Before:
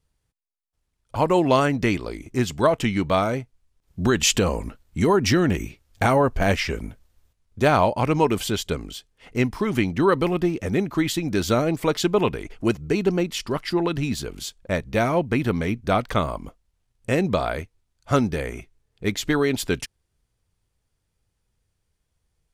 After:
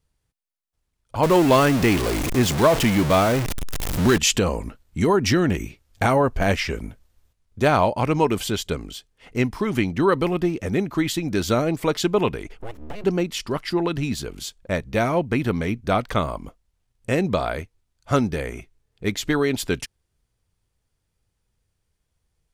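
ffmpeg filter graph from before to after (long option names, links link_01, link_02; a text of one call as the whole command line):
ffmpeg -i in.wav -filter_complex "[0:a]asettb=1/sr,asplit=3[link_01][link_02][link_03];[link_01]atrim=end=1.234[link_04];[link_02]atrim=start=1.23:end=4.18,asetpts=PTS-STARTPTS,afade=type=in:duration=0.004:curve=qsin,afade=type=out:start_time=2.946:duration=0.004:curve=qsin,aeval=exprs='val(0)+0.5*0.106*sgn(val(0))':channel_layout=same,acrusher=bits=7:dc=4:mix=0:aa=0.000001[link_05];[link_03]atrim=start=4.176[link_06];[link_04][link_05]acrossfade=duration=0.004:curve1=hsin:curve2=qsin[link_07];[link_07][link_06]acrossfade=duration=0.004:curve1=qsin:curve2=hsin,asettb=1/sr,asplit=3[link_08][link_09][link_10];[link_08]atrim=end=12.574[link_11];[link_09]atrim=start=12.57:end=13.04,asetpts=PTS-STARTPTS,afade=type=in:duration=0.004:curve=qsin,afade=type=out:start_time=0.466:duration=0.004:curve=qsin,acompressor=threshold=-27dB:ratio=6:attack=3.2:release=140:knee=1:detection=peak,aeval=exprs='abs(val(0))':channel_layout=same,equalizer=frequency=5900:width=0.86:gain=-7[link_12];[link_10]atrim=start=13.036[link_13];[link_11][link_12]acrossfade=duration=0.004:curve1=hsin:curve2=qsin[link_14];[link_14][link_13]acrossfade=duration=0.004:curve1=qsin:curve2=hsin" out.wav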